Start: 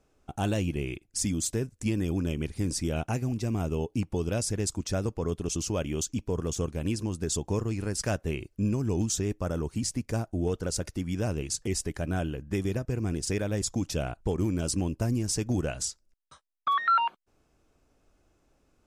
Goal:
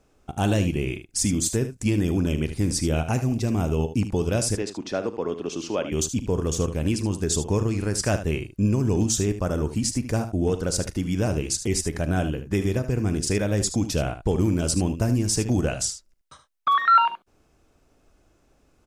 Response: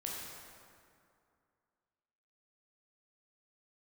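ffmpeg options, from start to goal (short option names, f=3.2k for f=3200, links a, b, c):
-filter_complex "[0:a]asettb=1/sr,asplit=3[a][b][c];[a]atrim=end=4.554[d];[b]atrim=start=4.55:end=5.92,asetpts=PTS-STARTPTS,afade=t=in:d=0.004:c=qsin,afade=t=out:st=1.366:d=0.004:c=qsin,acrossover=split=220 4600:gain=0.0708 1 0.0794[e][f][g];[e][f][g]amix=inputs=3:normalize=0[h];[c]atrim=start=5.916[i];[d][h]acrossfade=d=0.004:c1=hsin:c2=qsin[j];[j][i]acrossfade=d=0.004:c1=qsin:c2=hsin,aecho=1:1:39|75:0.158|0.282,volume=5.5dB"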